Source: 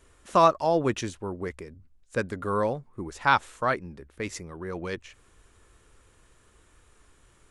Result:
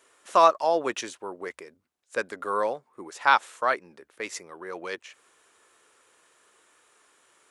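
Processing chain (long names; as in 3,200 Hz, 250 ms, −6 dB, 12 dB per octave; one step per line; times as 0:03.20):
high-pass filter 480 Hz 12 dB per octave
level +2 dB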